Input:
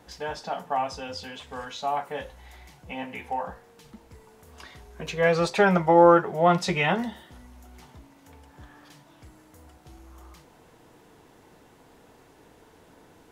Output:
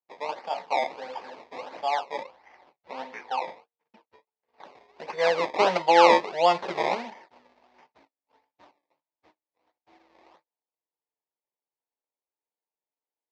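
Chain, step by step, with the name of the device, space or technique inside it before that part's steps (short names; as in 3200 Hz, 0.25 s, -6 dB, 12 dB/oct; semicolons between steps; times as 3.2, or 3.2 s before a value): gate -47 dBFS, range -43 dB; circuit-bent sampling toy (decimation with a swept rate 21×, swing 100% 1.5 Hz; speaker cabinet 440–4800 Hz, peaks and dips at 570 Hz +3 dB, 900 Hz +6 dB, 1400 Hz -6 dB, 2100 Hz +3 dB, 3100 Hz -4 dB); 2.23–4.65 bell 7300 Hz -5 dB 0.94 oct; gain -1 dB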